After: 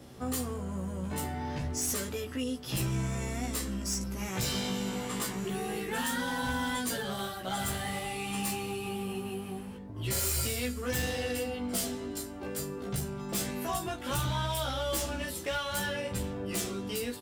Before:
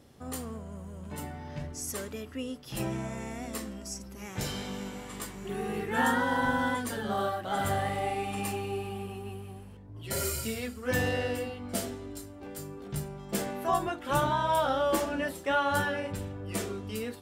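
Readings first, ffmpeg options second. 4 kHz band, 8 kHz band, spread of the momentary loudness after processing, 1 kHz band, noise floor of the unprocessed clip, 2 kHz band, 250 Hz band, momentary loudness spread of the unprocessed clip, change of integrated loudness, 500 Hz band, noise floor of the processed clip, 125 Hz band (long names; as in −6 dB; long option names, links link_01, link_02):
+4.0 dB, +5.0 dB, 5 LU, −6.0 dB, −46 dBFS, −3.0 dB, 0.0 dB, 14 LU, −1.0 dB, −3.5 dB, −42 dBFS, +1.5 dB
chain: -filter_complex "[0:a]bandreject=frequency=50:width_type=h:width=6,bandreject=frequency=100:width_type=h:width=6,acrossover=split=130|3000[link_01][link_02][link_03];[link_02]acompressor=threshold=-41dB:ratio=6[link_04];[link_01][link_04][link_03]amix=inputs=3:normalize=0,asoftclip=type=hard:threshold=-35dB,asplit=2[link_05][link_06];[link_06]adelay=16,volume=-2.5dB[link_07];[link_05][link_07]amix=inputs=2:normalize=0,volume=5.5dB"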